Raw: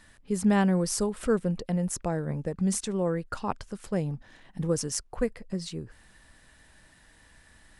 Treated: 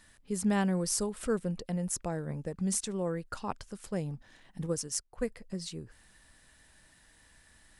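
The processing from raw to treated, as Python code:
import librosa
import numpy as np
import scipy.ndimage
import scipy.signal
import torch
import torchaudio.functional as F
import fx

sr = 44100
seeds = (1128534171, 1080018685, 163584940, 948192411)

y = fx.high_shelf(x, sr, hz=4000.0, db=6.5)
y = fx.upward_expand(y, sr, threshold_db=-40.0, expansion=1.5, at=(4.66, 5.22))
y = y * librosa.db_to_amplitude(-5.5)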